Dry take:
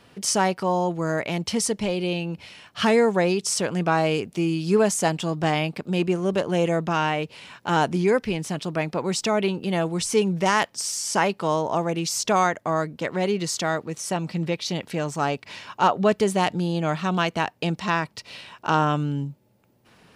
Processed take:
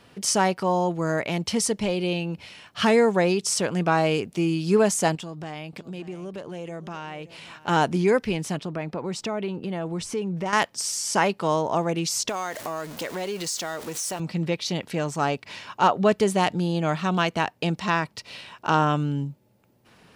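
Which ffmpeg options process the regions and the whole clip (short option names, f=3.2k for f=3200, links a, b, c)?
-filter_complex "[0:a]asettb=1/sr,asplit=3[a][b][c];[a]atrim=end=5.154[d];[b]atrim=start=5.15:end=7.68,asetpts=PTS-STARTPTS,afade=t=in:d=0.004:c=qsin,afade=t=out:st=2.526:d=0.004:c=qsin,acompressor=threshold=-36dB:ratio=3:attack=3.2:release=140:knee=1:detection=peak,aecho=1:1:579:0.15,atrim=end_sample=111573[e];[c]atrim=start=7.676[f];[d][e]acrossfade=d=0.004:c1=hsin:c2=qsin[g];[g][f]acrossfade=d=0.004:c1=qsin:c2=hsin,asettb=1/sr,asplit=3[h][i][j];[h]atrim=end=8.574[k];[i]atrim=start=8.57:end=10.53,asetpts=PTS-STARTPTS,afade=t=in:d=0.004:c=qsin,afade=t=out:st=1.956:d=0.004:c=qsin,highshelf=f=3.1k:g=-10,acompressor=threshold=-27dB:ratio=2.5:attack=3.2:release=140:knee=1:detection=peak[l];[j]atrim=start=10.526[m];[k][l]acrossfade=d=0.004:c1=hsin:c2=qsin[n];[n][m]acrossfade=d=0.004:c1=qsin:c2=hsin,asettb=1/sr,asplit=3[o][p][q];[o]atrim=end=12.294[r];[p]atrim=start=12.29:end=14.2,asetpts=PTS-STARTPTS,afade=t=in:d=0.004:c=qsin,afade=t=out:st=1.906:d=0.004:c=qsin,aeval=exprs='val(0)+0.5*0.0224*sgn(val(0))':c=same,bass=f=250:g=-9,treble=f=4k:g=6,acompressor=threshold=-28dB:ratio=3:attack=3.2:release=140:knee=1:detection=peak[s];[q]atrim=start=14.196[t];[r][s]acrossfade=d=0.004:c1=hsin:c2=qsin[u];[u][t]acrossfade=d=0.004:c1=qsin:c2=hsin"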